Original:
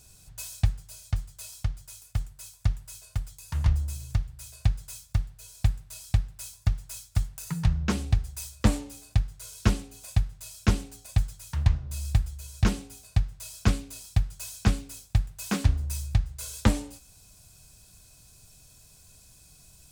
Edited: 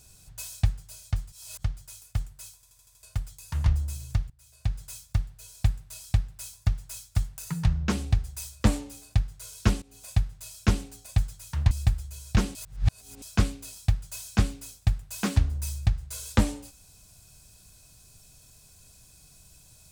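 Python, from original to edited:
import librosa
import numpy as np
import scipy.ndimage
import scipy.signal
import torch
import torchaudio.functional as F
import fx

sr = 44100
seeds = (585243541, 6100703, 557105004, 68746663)

y = fx.edit(x, sr, fx.reverse_span(start_s=1.32, length_s=0.32),
    fx.stutter_over(start_s=2.55, slice_s=0.08, count=6),
    fx.fade_in_from(start_s=4.3, length_s=0.51, curve='qua', floor_db=-16.0),
    fx.fade_in_from(start_s=9.82, length_s=0.32, curve='qsin', floor_db=-18.5),
    fx.cut(start_s=11.71, length_s=0.28),
    fx.reverse_span(start_s=12.83, length_s=0.67), tone=tone)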